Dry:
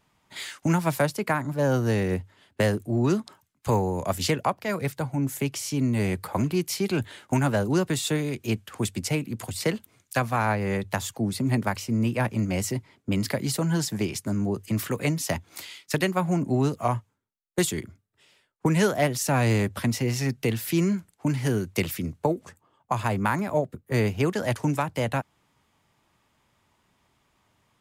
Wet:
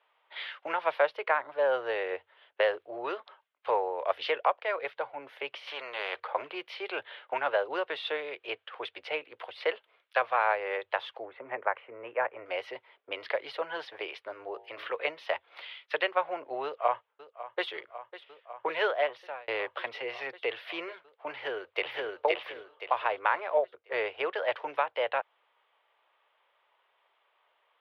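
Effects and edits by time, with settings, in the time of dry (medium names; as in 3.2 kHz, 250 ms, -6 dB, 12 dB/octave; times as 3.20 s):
5.67–6.20 s: spectrum-flattening compressor 2:1
11.25–12.46 s: low-pass 2.1 kHz 24 dB/octave
14.33–14.93 s: de-hum 53.82 Hz, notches 18
16.64–17.68 s: echo throw 550 ms, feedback 85%, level -15 dB
18.84–19.48 s: fade out
21.33–22.22 s: echo throw 520 ms, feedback 30%, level -0.5 dB
whole clip: elliptic band-pass 490–3300 Hz, stop band 40 dB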